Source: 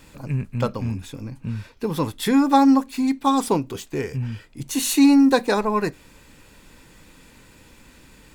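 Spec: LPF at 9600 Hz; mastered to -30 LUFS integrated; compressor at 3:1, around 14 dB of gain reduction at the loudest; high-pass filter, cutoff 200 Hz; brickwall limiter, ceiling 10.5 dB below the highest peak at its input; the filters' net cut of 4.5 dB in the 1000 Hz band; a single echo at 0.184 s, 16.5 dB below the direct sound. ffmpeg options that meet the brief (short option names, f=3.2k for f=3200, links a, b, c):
-af "highpass=200,lowpass=9.6k,equalizer=f=1k:t=o:g=-5.5,acompressor=threshold=-33dB:ratio=3,alimiter=level_in=6.5dB:limit=-24dB:level=0:latency=1,volume=-6.5dB,aecho=1:1:184:0.15,volume=9dB"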